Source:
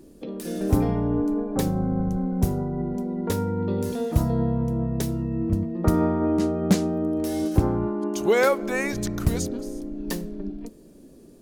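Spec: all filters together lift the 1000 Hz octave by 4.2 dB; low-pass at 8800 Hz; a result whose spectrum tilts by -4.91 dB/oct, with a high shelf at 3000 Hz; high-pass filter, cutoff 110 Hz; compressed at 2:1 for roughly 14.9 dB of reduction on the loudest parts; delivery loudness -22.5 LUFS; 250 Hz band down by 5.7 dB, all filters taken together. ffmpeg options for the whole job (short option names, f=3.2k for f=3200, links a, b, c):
-af "highpass=110,lowpass=8.8k,equalizer=f=250:t=o:g=-8,equalizer=f=1k:t=o:g=6.5,highshelf=f=3k:g=-3.5,acompressor=threshold=-44dB:ratio=2,volume=17dB"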